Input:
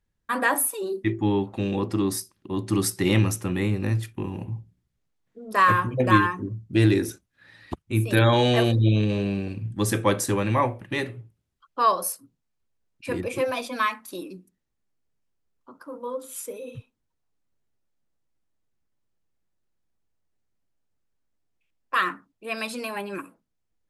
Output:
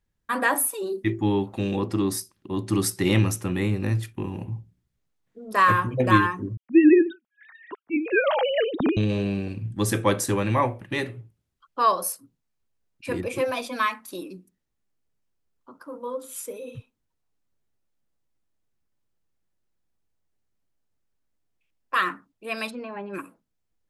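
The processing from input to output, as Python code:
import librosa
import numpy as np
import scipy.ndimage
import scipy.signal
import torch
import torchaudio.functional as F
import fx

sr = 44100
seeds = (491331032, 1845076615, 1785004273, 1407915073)

y = fx.high_shelf(x, sr, hz=7700.0, db=7.0, at=(0.98, 1.77))
y = fx.sine_speech(y, sr, at=(6.57, 8.97))
y = fx.spacing_loss(y, sr, db_at_10k=44, at=(22.69, 23.13), fade=0.02)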